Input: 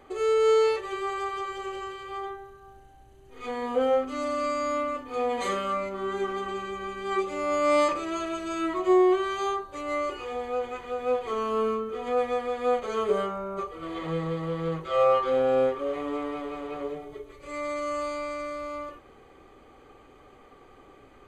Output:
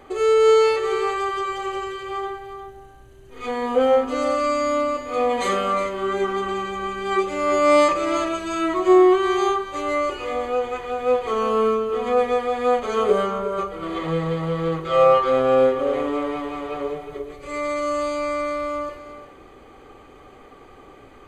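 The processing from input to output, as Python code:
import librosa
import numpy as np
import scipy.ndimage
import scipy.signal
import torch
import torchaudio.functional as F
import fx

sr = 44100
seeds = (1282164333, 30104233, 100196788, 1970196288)

y = x + 10.0 ** (-11.0 / 20.0) * np.pad(x, (int(357 * sr / 1000.0), 0))[:len(x)]
y = y * librosa.db_to_amplitude(6.5)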